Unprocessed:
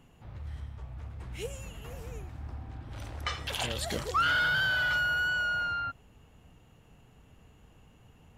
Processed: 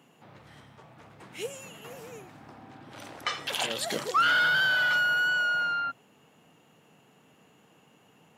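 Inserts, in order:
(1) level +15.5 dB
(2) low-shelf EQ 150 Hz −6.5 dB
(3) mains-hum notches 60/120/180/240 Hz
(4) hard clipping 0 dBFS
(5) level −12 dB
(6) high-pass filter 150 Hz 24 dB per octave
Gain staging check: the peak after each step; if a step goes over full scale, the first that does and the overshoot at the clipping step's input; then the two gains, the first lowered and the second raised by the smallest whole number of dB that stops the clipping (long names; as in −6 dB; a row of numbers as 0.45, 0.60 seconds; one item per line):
−2.5, −3.0, −3.0, −3.0, −15.0, −15.0 dBFS
no step passes full scale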